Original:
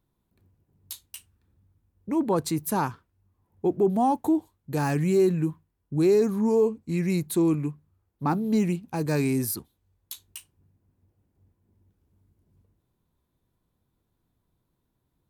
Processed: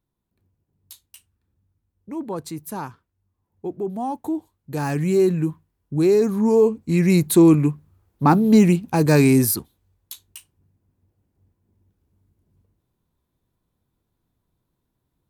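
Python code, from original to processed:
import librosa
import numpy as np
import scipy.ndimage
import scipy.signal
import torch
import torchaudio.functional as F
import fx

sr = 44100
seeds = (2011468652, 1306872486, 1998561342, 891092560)

y = fx.gain(x, sr, db=fx.line((3.96, -5.0), (5.2, 3.5), (6.22, 3.5), (7.29, 10.0), (9.38, 10.0), (10.23, 0.5)))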